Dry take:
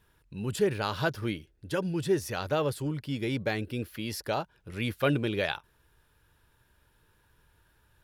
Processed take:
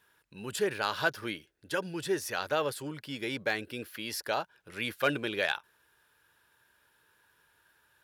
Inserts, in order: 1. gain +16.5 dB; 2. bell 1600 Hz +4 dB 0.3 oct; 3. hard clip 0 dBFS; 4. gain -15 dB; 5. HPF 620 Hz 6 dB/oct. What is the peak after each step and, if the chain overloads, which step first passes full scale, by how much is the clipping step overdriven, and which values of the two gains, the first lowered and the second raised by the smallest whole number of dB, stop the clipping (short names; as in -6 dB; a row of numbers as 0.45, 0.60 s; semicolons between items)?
+3.0, +3.5, 0.0, -15.0, -12.5 dBFS; step 1, 3.5 dB; step 1 +12.5 dB, step 4 -11 dB